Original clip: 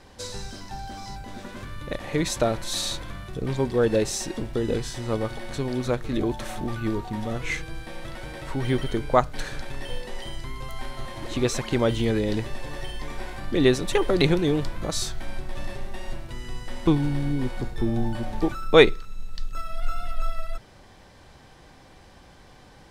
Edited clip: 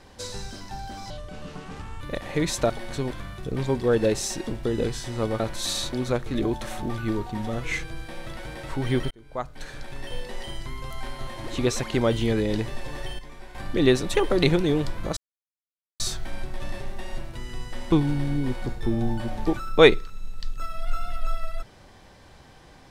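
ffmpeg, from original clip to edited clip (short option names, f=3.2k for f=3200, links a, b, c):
-filter_complex "[0:a]asplit=11[a][b][c][d][e][f][g][h][i][j][k];[a]atrim=end=1.104[l];[b]atrim=start=1.1:end=1.79,asetpts=PTS-STARTPTS,asetrate=33516,aresample=44100,atrim=end_sample=40038,asetpts=PTS-STARTPTS[m];[c]atrim=start=1.786:end=2.482[n];[d]atrim=start=5.298:end=5.712[o];[e]atrim=start=3.008:end=5.302[p];[f]atrim=start=2.478:end=3.012[q];[g]atrim=start=5.708:end=8.89,asetpts=PTS-STARTPTS,afade=t=out:st=3.178:d=0.004:c=hsin[r];[h]atrim=start=8.89:end=12.972,asetpts=PTS-STARTPTS,afade=t=in:d=1.14[s];[i]atrim=start=12.968:end=13.332,asetpts=PTS-STARTPTS,volume=-9.5dB[t];[j]atrim=start=13.328:end=14.95,asetpts=PTS-STARTPTS,afade=t=out:st=1.618:d=0.004:c=hsin,apad=pad_dur=0.83[u];[k]atrim=start=14.95,asetpts=PTS-STARTPTS,afade=t=in:d=0.004:c=hsin[v];[l][m]acrossfade=d=0.004:c1=hsin:c2=hsin[w];[w][n]acrossfade=d=0.004:c1=hsin:c2=hsin[x];[x][o]acrossfade=d=0.004:c1=hsin:c2=hsin[y];[y][p]acrossfade=d=0.004:c1=hsin:c2=hsin[z];[z][q]acrossfade=d=0.004:c1=hsin:c2=hsin[aa];[r][s]concat=n=2:v=0:a=1[ab];[aa][ab]acrossfade=d=0.004:c1=hsin:c2=hsin[ac];[ac][t]acrossfade=d=0.004:c1=hsin:c2=hsin[ad];[u][v]concat=n=2:v=0:a=1[ae];[ad][ae]acrossfade=d=0.004:c1=hsin:c2=hsin"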